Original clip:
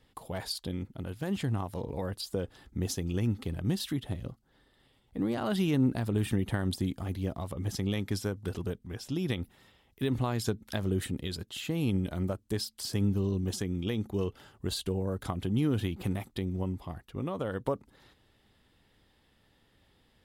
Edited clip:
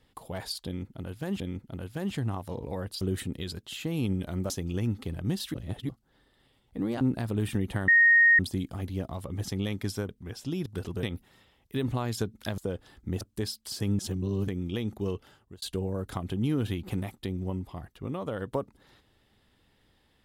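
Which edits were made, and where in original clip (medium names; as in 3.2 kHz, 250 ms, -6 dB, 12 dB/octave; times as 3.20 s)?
0.66–1.40 s: loop, 2 plays
2.27–2.90 s: swap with 10.85–12.34 s
3.94–4.29 s: reverse
5.41–5.79 s: delete
6.66 s: add tone 1.86 kHz -15.5 dBFS 0.51 s
8.36–8.73 s: move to 9.30 s
13.12–13.61 s: reverse
14.11–14.75 s: fade out equal-power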